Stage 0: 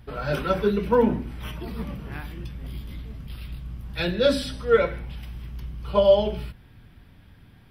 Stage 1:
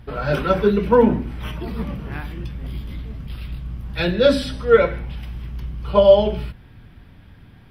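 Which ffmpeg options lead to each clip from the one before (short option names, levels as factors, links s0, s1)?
-af "highshelf=f=4800:g=-7,volume=1.88"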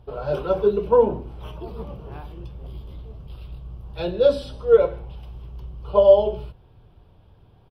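-af "firequalizer=gain_entry='entry(110,0);entry(250,-8);entry(390,6);entry(1000,3);entry(1900,-16);entry(2800,-3);entry(7100,-6)':delay=0.05:min_phase=1,volume=0.473"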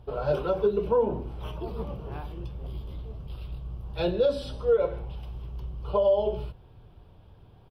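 -af "alimiter=limit=0.178:level=0:latency=1:release=226"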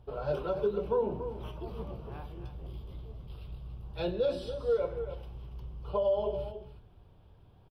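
-af "aecho=1:1:283:0.316,volume=0.501"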